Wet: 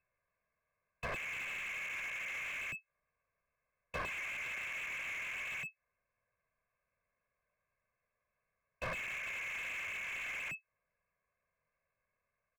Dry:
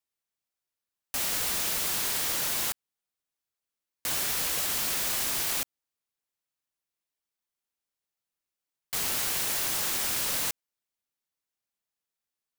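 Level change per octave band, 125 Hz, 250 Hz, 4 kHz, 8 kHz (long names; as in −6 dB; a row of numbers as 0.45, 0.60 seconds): −8.0, −13.5, −18.0, −25.5 decibels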